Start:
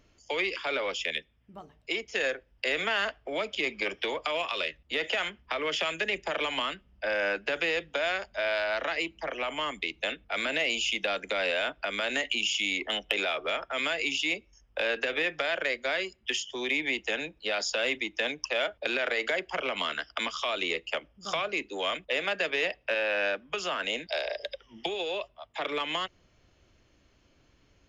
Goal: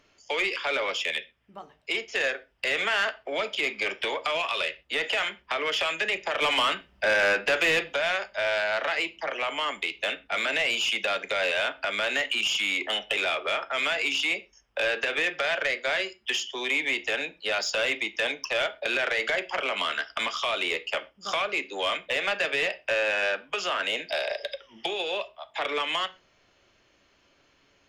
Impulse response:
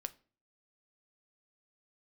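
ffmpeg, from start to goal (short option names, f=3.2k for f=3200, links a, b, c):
-filter_complex "[0:a]asettb=1/sr,asplit=3[a][b][c];[a]atrim=end=6.424[d];[b]atrim=start=6.42:end=7.95,asetpts=PTS-STARTPTS,afade=t=in:d=0.004:c=qsin,afade=t=out:st=1.526:d=0.004:c=qsin,acontrast=52[e];[c]atrim=start=7.946[f];[d][e]acrossfade=d=0.004:c1=hsin:c2=qsin[g];[g][f]acrossfade=d=0.004:c1=qsin:c2=hsin[h];[1:a]atrim=start_sample=2205,atrim=end_sample=6174[i];[h][i]afir=irnorm=-1:irlink=0,asplit=2[j][k];[k]highpass=f=720:p=1,volume=16dB,asoftclip=type=tanh:threshold=-12.5dB[l];[j][l]amix=inputs=2:normalize=0,lowpass=f=5k:p=1,volume=-6dB,volume=-2dB"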